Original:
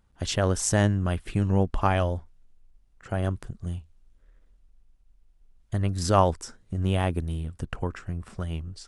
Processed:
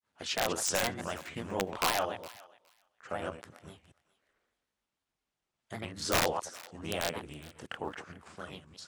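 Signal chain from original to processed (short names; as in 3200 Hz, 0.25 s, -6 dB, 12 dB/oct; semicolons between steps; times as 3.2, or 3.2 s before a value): reverse delay 0.103 s, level -9 dB; weighting filter A; wow and flutter 33 cents; grains 0.161 s, grains 19/s, spray 17 ms, pitch spread up and down by 3 st; wrapped overs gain 19 dB; thinning echo 0.415 s, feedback 15%, high-pass 950 Hz, level -19 dB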